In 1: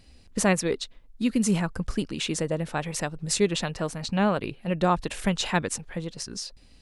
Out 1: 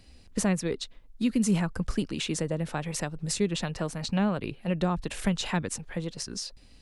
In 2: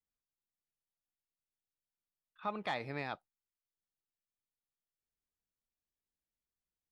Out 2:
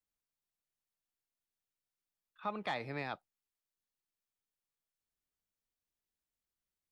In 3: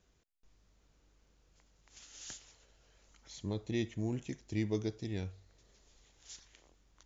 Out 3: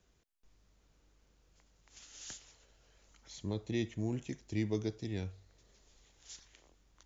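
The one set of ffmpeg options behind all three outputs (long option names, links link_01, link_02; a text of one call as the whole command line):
ffmpeg -i in.wav -filter_complex "[0:a]acrossover=split=260[link_01][link_02];[link_02]acompressor=threshold=-30dB:ratio=3[link_03];[link_01][link_03]amix=inputs=2:normalize=0" out.wav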